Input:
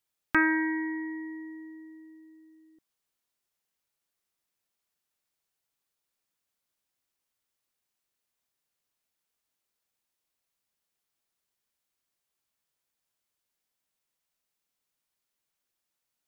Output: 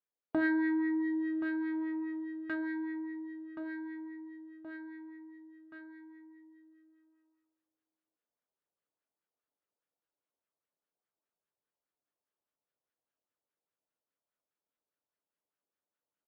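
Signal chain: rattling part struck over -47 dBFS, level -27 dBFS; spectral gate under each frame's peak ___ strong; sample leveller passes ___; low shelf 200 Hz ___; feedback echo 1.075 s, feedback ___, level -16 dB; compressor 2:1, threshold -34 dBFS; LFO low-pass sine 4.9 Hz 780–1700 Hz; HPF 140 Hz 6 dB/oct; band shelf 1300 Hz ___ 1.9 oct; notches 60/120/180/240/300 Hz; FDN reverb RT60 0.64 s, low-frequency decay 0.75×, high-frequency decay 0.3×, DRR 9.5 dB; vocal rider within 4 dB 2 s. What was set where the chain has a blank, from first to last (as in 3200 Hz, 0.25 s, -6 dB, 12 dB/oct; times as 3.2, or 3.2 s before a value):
-35 dB, 3, -4 dB, 55%, -8.5 dB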